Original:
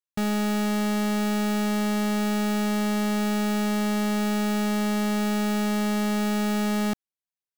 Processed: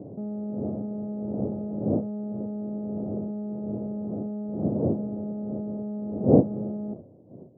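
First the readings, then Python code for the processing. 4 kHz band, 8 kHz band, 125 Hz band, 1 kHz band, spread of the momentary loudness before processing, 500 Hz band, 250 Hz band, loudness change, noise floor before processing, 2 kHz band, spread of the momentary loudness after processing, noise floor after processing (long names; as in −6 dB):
below −40 dB, below −40 dB, can't be measured, −13.5 dB, 0 LU, 0.0 dB, −4.0 dB, −4.0 dB, below −85 dBFS, below −40 dB, 10 LU, −49 dBFS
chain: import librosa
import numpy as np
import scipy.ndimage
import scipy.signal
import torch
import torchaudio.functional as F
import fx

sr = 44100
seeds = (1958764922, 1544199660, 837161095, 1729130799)

y = fx.dmg_wind(x, sr, seeds[0], corner_hz=390.0, level_db=-22.0)
y = scipy.signal.sosfilt(scipy.signal.ellip(3, 1.0, 70, [100.0, 630.0], 'bandpass', fs=sr, output='sos'), y)
y = y * 10.0 ** (-7.0 / 20.0)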